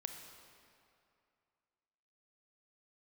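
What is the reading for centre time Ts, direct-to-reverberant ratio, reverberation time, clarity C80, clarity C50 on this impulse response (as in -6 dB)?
51 ms, 4.5 dB, 2.5 s, 6.5 dB, 5.5 dB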